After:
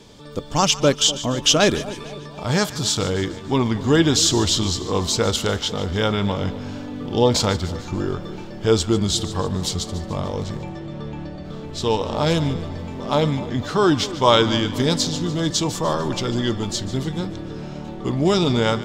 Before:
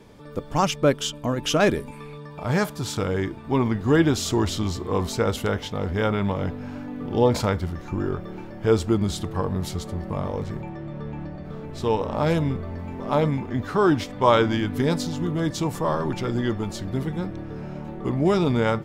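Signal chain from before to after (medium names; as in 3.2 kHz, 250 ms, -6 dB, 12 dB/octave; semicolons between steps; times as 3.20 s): high-order bell 4.9 kHz +10 dB; on a send: two-band feedback delay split 970 Hz, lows 248 ms, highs 147 ms, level -15 dB; on the sum: trim +2 dB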